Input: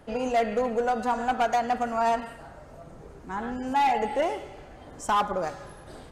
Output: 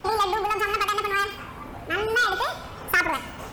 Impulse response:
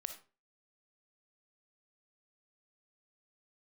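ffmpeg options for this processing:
-af "acompressor=threshold=-27dB:ratio=2,adynamicequalizer=threshold=0.00708:dfrequency=550:dqfactor=1.2:tfrequency=550:tqfactor=1.2:attack=5:release=100:ratio=0.375:range=3.5:mode=cutabove:tftype=bell,asetrate=76440,aresample=44100,volume=7.5dB"

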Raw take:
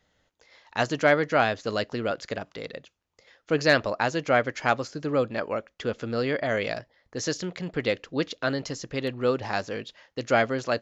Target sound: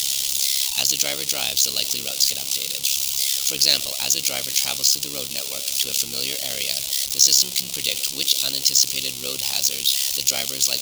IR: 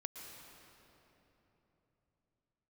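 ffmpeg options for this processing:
-af "aeval=exprs='val(0)+0.5*0.0473*sgn(val(0))':channel_layout=same,aexciter=amount=15.7:drive=8.4:freq=2700,tremolo=f=68:d=0.824,volume=-10.5dB"

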